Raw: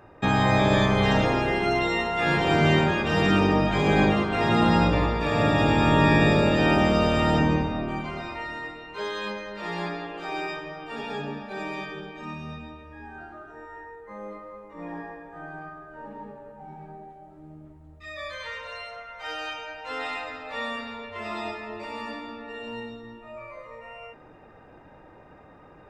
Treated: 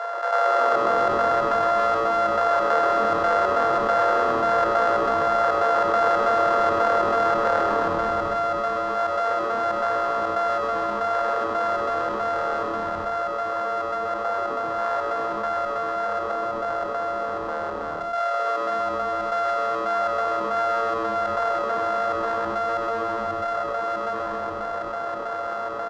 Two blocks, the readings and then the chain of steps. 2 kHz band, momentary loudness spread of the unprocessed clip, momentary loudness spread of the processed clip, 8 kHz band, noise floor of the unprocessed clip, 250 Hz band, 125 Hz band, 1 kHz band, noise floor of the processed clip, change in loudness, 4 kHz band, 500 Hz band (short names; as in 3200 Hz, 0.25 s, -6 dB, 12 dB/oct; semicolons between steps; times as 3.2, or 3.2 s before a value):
-1.0 dB, 22 LU, 7 LU, n/a, -51 dBFS, -9.0 dB, -16.5 dB, +7.5 dB, -29 dBFS, +1.0 dB, -6.0 dB, +5.5 dB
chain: sample sorter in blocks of 64 samples; Chebyshev high-pass 450 Hz, order 10; resonant high shelf 1900 Hz -7.5 dB, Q 3; step gate "xx.xxxx.xx." 139 bpm -12 dB; air absorption 160 m; frequency-shifting echo 0.131 s, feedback 56%, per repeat -120 Hz, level -8 dB; fast leveller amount 70%